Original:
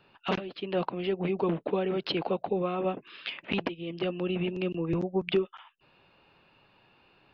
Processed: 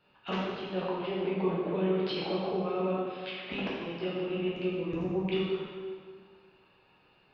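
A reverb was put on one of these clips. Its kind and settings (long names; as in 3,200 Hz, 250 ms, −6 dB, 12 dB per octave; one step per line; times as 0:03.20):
dense smooth reverb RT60 1.9 s, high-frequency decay 0.8×, DRR −6.5 dB
level −9 dB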